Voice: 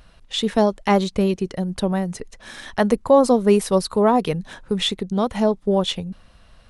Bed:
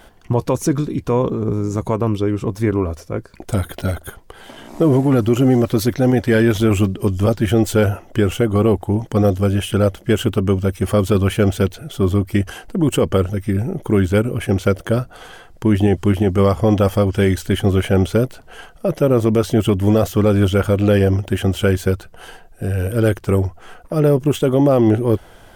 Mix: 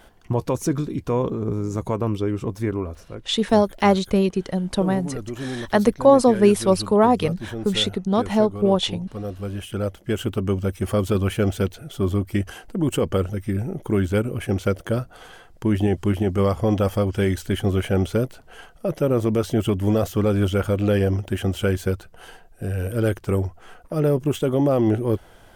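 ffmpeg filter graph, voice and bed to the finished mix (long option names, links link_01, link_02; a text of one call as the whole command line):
ffmpeg -i stem1.wav -i stem2.wav -filter_complex "[0:a]adelay=2950,volume=0.5dB[link_01];[1:a]volume=6dB,afade=type=out:start_time=2.43:duration=0.95:silence=0.266073,afade=type=in:start_time=9.21:duration=1.39:silence=0.281838[link_02];[link_01][link_02]amix=inputs=2:normalize=0" out.wav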